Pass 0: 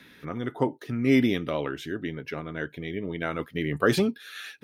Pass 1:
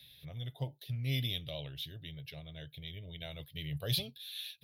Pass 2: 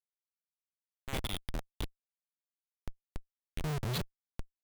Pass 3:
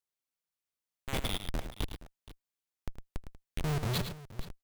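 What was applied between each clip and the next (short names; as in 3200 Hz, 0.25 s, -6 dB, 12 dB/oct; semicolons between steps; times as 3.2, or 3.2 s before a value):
EQ curve 140 Hz 0 dB, 200 Hz -22 dB, 370 Hz -25 dB, 620 Hz -10 dB, 1300 Hz -29 dB, 3700 Hz +6 dB, 7700 Hz -16 dB, 11000 Hz +6 dB; gain -2 dB
high-pass sweep 1200 Hz -> 120 Hz, 1.02–3.9; Schmitt trigger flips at -32 dBFS; gain +6 dB
tapped delay 79/108/472 ms -20/-9/-17 dB; gain +2.5 dB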